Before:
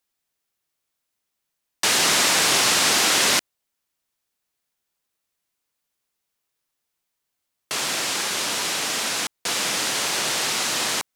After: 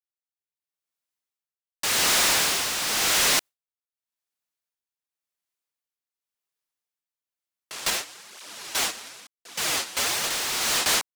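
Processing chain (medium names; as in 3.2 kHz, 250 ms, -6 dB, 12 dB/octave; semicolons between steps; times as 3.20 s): gate with hold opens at -13 dBFS; bass shelf 320 Hz -6 dB; waveshaping leveller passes 1; level rider gain up to 14.5 dB; overload inside the chain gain 19.5 dB; tremolo 0.91 Hz, depth 58%; 7.90–10.24 s: cancelling through-zero flanger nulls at 1 Hz, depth 7.8 ms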